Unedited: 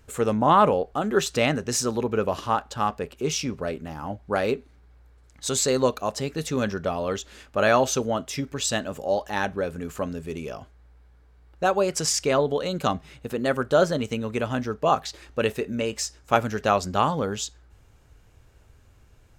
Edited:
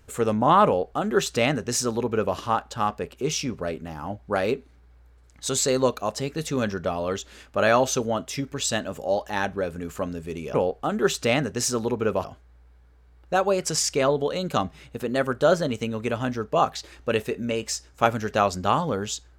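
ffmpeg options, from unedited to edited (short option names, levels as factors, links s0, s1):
-filter_complex "[0:a]asplit=3[s0][s1][s2];[s0]atrim=end=10.542[s3];[s1]atrim=start=0.658:end=2.362[s4];[s2]atrim=start=10.538[s5];[s3][s4]acrossfade=d=0.004:c1=hsin:c2=hsin[s6];[s6][s5]acrossfade=d=0.004:c1=hsin:c2=hsin"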